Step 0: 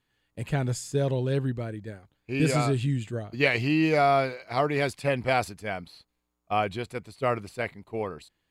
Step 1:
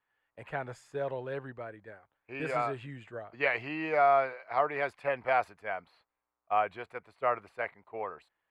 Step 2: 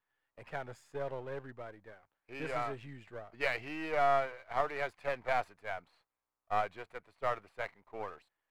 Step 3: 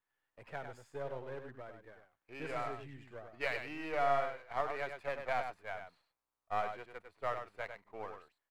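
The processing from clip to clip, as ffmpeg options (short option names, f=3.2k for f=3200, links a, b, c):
-filter_complex "[0:a]acrossover=split=560 2100:gain=0.1 1 0.0631[a][b][c];[a][b][c]amix=inputs=3:normalize=0,volume=1dB"
-af "aeval=exprs='if(lt(val(0),0),0.447*val(0),val(0))':c=same,volume=-2dB"
-af "aecho=1:1:100:0.422,volume=-3.5dB"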